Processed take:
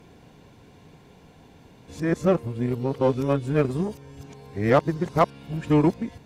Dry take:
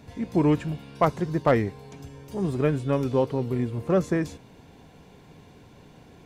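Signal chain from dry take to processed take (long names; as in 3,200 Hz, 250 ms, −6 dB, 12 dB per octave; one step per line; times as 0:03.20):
played backwards from end to start
harmonic generator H 7 −29 dB, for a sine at −8.5 dBFS
level +2 dB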